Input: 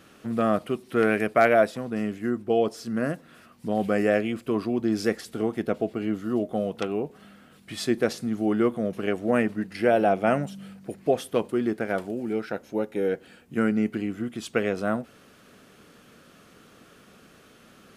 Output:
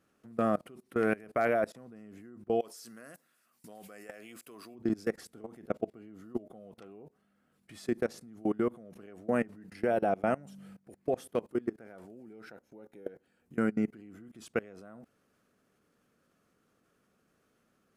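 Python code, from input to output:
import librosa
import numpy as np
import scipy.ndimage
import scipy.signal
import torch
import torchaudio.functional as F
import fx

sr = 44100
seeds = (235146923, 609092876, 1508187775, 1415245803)

y = fx.tilt_eq(x, sr, slope=4.0, at=(2.59, 4.74), fade=0.02)
y = fx.peak_eq(y, sr, hz=3300.0, db=-6.5, octaves=1.1)
y = fx.level_steps(y, sr, step_db=23)
y = F.gain(torch.from_numpy(y), -4.0).numpy()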